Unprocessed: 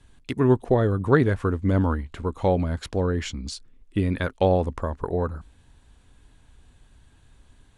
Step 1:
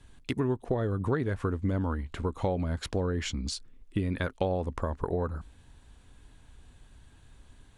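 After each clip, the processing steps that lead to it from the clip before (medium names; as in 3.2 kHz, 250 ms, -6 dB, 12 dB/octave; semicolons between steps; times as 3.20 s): compression 5:1, threshold -26 dBFS, peak gain reduction 13 dB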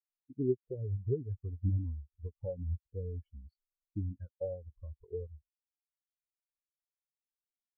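spectral contrast expander 4:1; trim -5.5 dB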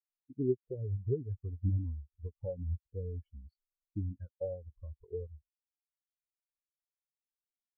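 no audible change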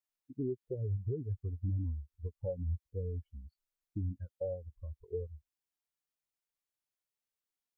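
peak limiter -29.5 dBFS, peak gain reduction 10 dB; trim +1.5 dB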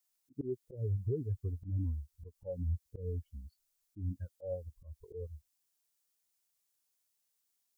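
slow attack 129 ms; tone controls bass -2 dB, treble +10 dB; trim +3 dB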